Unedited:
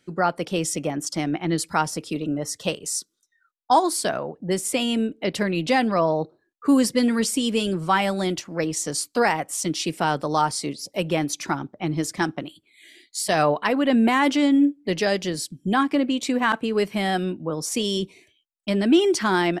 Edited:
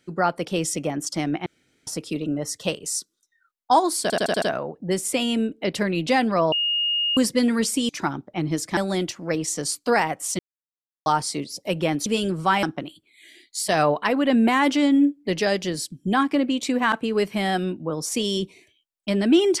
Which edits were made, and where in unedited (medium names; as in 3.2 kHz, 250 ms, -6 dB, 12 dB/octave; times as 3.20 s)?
1.46–1.87 s: room tone
4.02 s: stutter 0.08 s, 6 plays
6.12–6.77 s: bleep 2.85 kHz -20 dBFS
7.49–8.06 s: swap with 11.35–12.23 s
9.68–10.35 s: mute